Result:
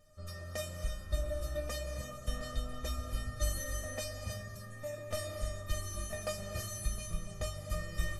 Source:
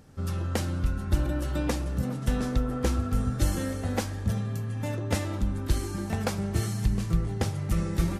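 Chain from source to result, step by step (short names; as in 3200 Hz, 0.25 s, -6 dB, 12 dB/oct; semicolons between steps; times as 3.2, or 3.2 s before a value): resonator 610 Hz, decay 0.29 s, mix 100%; non-linear reverb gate 0.34 s rising, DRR 5.5 dB; gain +12.5 dB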